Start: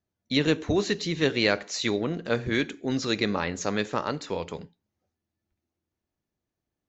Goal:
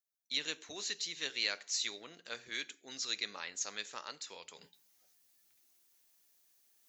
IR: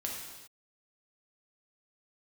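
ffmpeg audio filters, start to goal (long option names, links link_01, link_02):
-af "aderivative,areverse,acompressor=mode=upward:threshold=-51dB:ratio=2.5,areverse"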